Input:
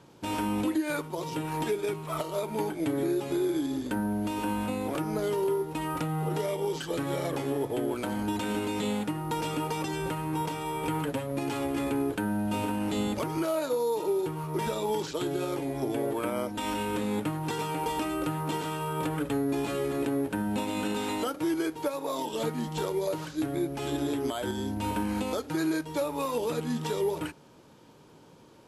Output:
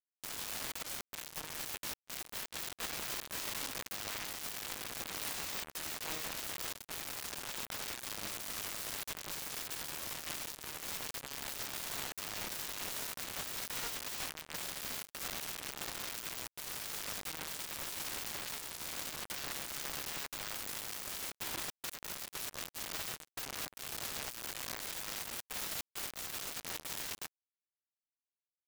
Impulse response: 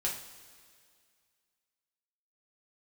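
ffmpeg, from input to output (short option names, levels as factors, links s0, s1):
-filter_complex "[0:a]asplit=2[s0][s1];[1:a]atrim=start_sample=2205[s2];[s1][s2]afir=irnorm=-1:irlink=0,volume=0.0891[s3];[s0][s3]amix=inputs=2:normalize=0,aeval=exprs='(mod(21.1*val(0)+1,2)-1)/21.1':c=same,acrusher=bits=3:mix=0:aa=0.5,volume=4.22"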